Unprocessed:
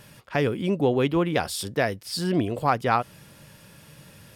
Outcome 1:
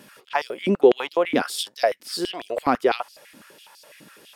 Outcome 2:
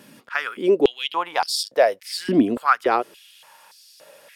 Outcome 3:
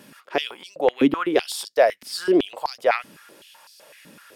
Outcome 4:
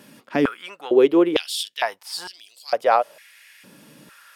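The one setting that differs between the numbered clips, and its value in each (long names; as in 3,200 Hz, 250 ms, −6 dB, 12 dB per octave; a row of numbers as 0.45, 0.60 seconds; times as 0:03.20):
high-pass on a step sequencer, speed: 12, 3.5, 7.9, 2.2 Hertz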